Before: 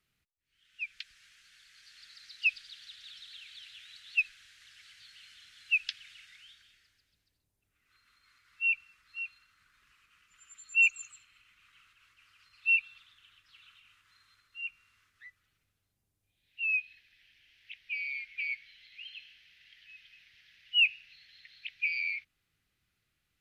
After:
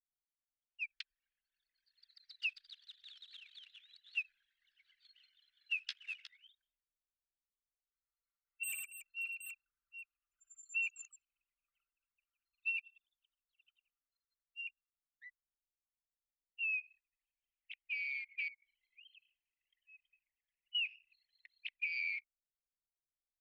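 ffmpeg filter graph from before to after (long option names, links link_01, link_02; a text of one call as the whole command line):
ffmpeg -i in.wav -filter_complex "[0:a]asettb=1/sr,asplit=3[link_01][link_02][link_03];[link_01]atrim=end=4.264[link_04];[link_02]atrim=start=4.26:end=6.48,asetpts=PTS-STARTPTS,afade=type=in:duration=0.004:curve=qsin,afade=type=out:start_time=2.216:duration=0.004:curve=qsin,asplit=2[link_05][link_06];[link_06]adelay=14,volume=-4.5dB[link_07];[link_05][link_07]amix=inputs=2:normalize=0,atrim=end_sample=97902,aecho=1:1:361:0.178,atrim=end_sample=97902[link_08];[link_03]atrim=start=6.476[link_09];[link_04][link_08]acrossfade=duration=0.004:curve1=hsin:curve2=qsin[link_10];[link_10][link_09]acrossfade=duration=0.004:curve1=qsin:curve2=hsin,asettb=1/sr,asplit=3[link_11][link_12][link_13];[link_11]atrim=end=8.634[link_14];[link_12]atrim=start=8.63:end=10.69,asetpts=PTS-STARTPTS,afade=type=in:duration=0.004:curve=qsin,afade=type=out:start_time=2.056:duration=0.004:curve=qsin,aeval=exprs='0.0237*(abs(mod(val(0)/0.0237+3,4)-2)-1)':channel_layout=same,aecho=1:1:55|110|188|282|772:0.316|0.631|0.119|0.316|0.355,atrim=end_sample=90846[link_15];[link_13]atrim=start=10.686[link_16];[link_14][link_15]acrossfade=duration=0.004:curve1=hsin:curve2=qsin[link_17];[link_17][link_16]acrossfade=duration=0.004:curve1=qsin:curve2=hsin,asettb=1/sr,asplit=3[link_18][link_19][link_20];[link_18]atrim=end=12.694[link_21];[link_19]atrim=start=12.69:end=15.26,asetpts=PTS-STARTPTS,afade=type=in:duration=0.004:curve=qsin,afade=type=out:start_time=2.566:duration=0.004:curve=qsin,highshelf=frequency=5800:gain=8.5,tremolo=f=11:d=0.6[link_22];[link_20]atrim=start=15.256[link_23];[link_21][link_22]acrossfade=duration=0.004:curve1=hsin:curve2=qsin[link_24];[link_24][link_23]acrossfade=duration=0.004:curve1=qsin:curve2=hsin,asettb=1/sr,asplit=3[link_25][link_26][link_27];[link_25]atrim=end=18.484[link_28];[link_26]atrim=start=18.48:end=20.75,asetpts=PTS-STARTPTS,afade=type=in:duration=0.004:curve=qsin,afade=type=out:start_time=2.266:duration=0.004:curve=qsin,acompressor=threshold=-48dB:ratio=6:attack=3.2:release=140:knee=1:detection=peak,highshelf=frequency=5300:gain=-9.5[link_29];[link_27]atrim=start=20.746[link_30];[link_28][link_29]acrossfade=duration=0.004:curve1=hsin:curve2=qsin[link_31];[link_31][link_30]acrossfade=duration=0.004:curve1=qsin:curve2=hsin,anlmdn=0.01,lowshelf=frequency=590:width_type=q:width=3:gain=-14,acompressor=threshold=-30dB:ratio=12,volume=-4dB" out.wav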